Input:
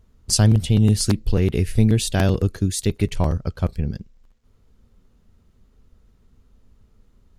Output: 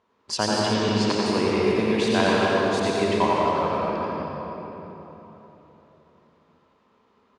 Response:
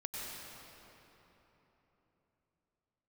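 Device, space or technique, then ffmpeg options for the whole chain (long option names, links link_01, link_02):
station announcement: -filter_complex "[0:a]highpass=400,lowpass=3500,equalizer=frequency=1000:width_type=o:width=0.27:gain=11,aecho=1:1:87.46|244.9:0.562|0.316[link_01];[1:a]atrim=start_sample=2205[link_02];[link_01][link_02]afir=irnorm=-1:irlink=0,asettb=1/sr,asplit=3[link_03][link_04][link_05];[link_03]atrim=end=0.744[link_06];[link_04]atrim=start=0.74:end=1.26,asetpts=PTS-STARTPTS,afade=type=in:duration=0.004:curve=qsin,afade=type=out:start_time=0.516:duration=0.004:curve=qsin,lowpass=frequency=7800:width=0.5412,lowpass=frequency=7800:width=1.3066[link_07];[link_05]atrim=start=1.256[link_08];[link_06][link_07]acrossfade=duration=0.004:curve1=hsin:curve2=qsin[link_09];[link_09][link_08]acrossfade=duration=0.004:curve1=qsin:curve2=hsin,volume=4.5dB"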